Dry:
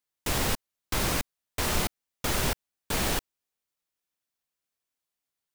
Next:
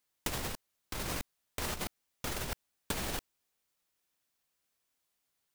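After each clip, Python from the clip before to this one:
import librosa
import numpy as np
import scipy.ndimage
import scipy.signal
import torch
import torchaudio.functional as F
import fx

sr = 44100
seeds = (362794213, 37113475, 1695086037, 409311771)

y = fx.over_compress(x, sr, threshold_db=-32.0, ratio=-0.5)
y = y * 10.0 ** (-2.0 / 20.0)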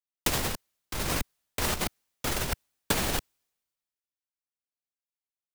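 y = fx.band_widen(x, sr, depth_pct=70)
y = y * 10.0 ** (7.5 / 20.0)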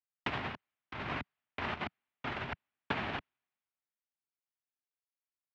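y = fx.cabinet(x, sr, low_hz=120.0, low_slope=12, high_hz=2800.0, hz=(180.0, 330.0, 500.0), db=(-6, -5, -10))
y = y * 10.0 ** (-3.5 / 20.0)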